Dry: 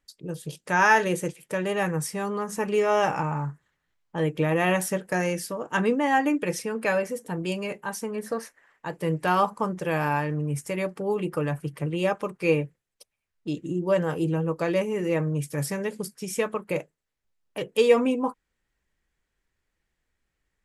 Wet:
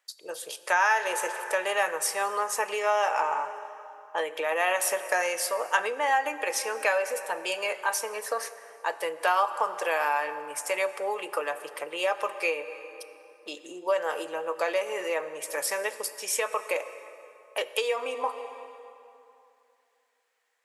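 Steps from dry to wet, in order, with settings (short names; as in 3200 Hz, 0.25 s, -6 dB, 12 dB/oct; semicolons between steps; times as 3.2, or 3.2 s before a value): plate-style reverb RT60 2.7 s, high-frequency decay 0.7×, DRR 13 dB; compressor 10:1, threshold -25 dBFS, peak gain reduction 13 dB; HPF 560 Hz 24 dB/oct; gain +6.5 dB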